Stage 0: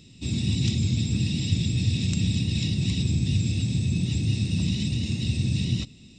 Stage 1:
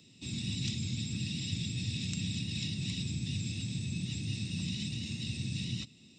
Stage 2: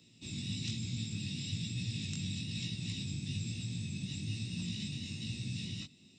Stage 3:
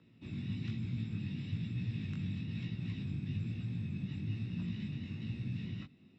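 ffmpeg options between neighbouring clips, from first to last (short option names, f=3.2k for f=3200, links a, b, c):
-filter_complex "[0:a]highpass=98,lowshelf=f=190:g=-6.5,acrossover=split=270|1100|1400[a][b][c][d];[b]acompressor=threshold=-51dB:ratio=6[e];[a][e][c][d]amix=inputs=4:normalize=0,volume=-5.5dB"
-af "flanger=delay=17:depth=3.8:speed=1.1"
-af "lowpass=f=1.5k:t=q:w=1.8,volume=1dB"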